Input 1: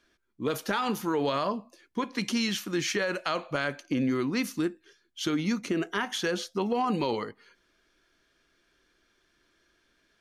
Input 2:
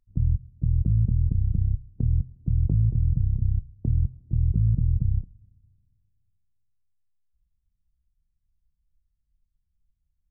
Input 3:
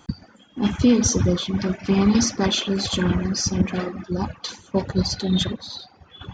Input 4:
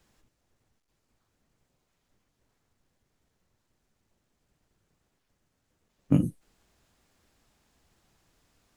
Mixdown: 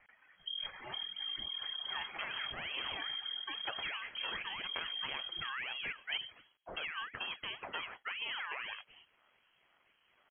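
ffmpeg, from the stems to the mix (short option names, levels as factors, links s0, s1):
-filter_complex "[0:a]equalizer=f=2400:w=1.5:g=14,aeval=exprs='val(0)*sin(2*PI*1100*n/s+1100*0.8/2*sin(2*PI*2*n/s))':c=same,adelay=1500,volume=0.631[s0];[1:a]adelay=300,volume=0.2[s1];[2:a]highpass=f=1100:w=0.5412,highpass=f=1100:w=1.3066,volume=0.473[s2];[3:a]volume=0.112[s3];[s0][s1][s2]amix=inputs=3:normalize=0,acrusher=bits=10:mix=0:aa=0.000001,acompressor=threshold=0.01:ratio=2.5,volume=1[s4];[s3][s4]amix=inputs=2:normalize=0,lowpass=f=2800:t=q:w=0.5098,lowpass=f=2800:t=q:w=0.6013,lowpass=f=2800:t=q:w=0.9,lowpass=f=2800:t=q:w=2.563,afreqshift=-3300"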